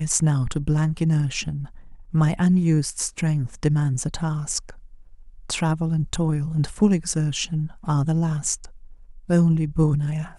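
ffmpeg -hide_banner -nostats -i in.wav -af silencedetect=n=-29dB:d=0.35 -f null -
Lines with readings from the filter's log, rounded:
silence_start: 1.65
silence_end: 2.14 | silence_duration: 0.49
silence_start: 4.70
silence_end: 5.50 | silence_duration: 0.80
silence_start: 8.64
silence_end: 9.29 | silence_duration: 0.65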